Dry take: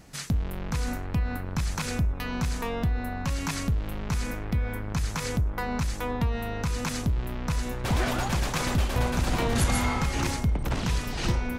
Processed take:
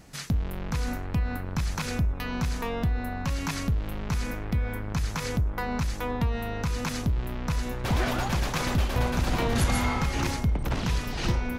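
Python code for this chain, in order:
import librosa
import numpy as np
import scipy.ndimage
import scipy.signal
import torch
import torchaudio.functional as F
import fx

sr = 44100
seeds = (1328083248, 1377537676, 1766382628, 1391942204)

y = fx.dynamic_eq(x, sr, hz=8400.0, q=1.8, threshold_db=-54.0, ratio=4.0, max_db=-5)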